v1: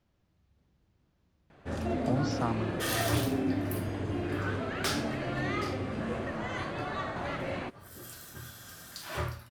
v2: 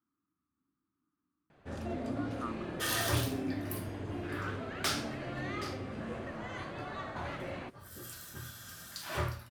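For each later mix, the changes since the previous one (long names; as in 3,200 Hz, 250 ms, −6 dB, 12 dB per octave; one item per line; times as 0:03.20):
speech: add pair of resonant band-passes 590 Hz, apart 2.1 octaves
first sound −6.0 dB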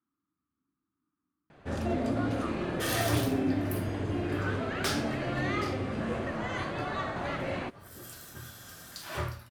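first sound +7.5 dB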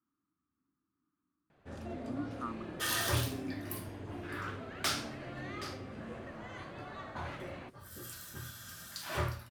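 first sound −12.0 dB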